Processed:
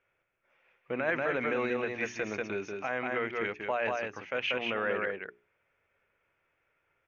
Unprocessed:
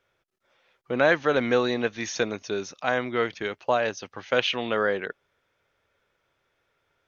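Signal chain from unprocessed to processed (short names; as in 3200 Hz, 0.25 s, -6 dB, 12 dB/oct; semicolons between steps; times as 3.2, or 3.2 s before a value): echo 0.187 s -5 dB; limiter -15.5 dBFS, peak gain reduction 10.5 dB; resonant high shelf 3100 Hz -7 dB, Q 3; notches 60/120/180/240/300/360/420 Hz; gain -5.5 dB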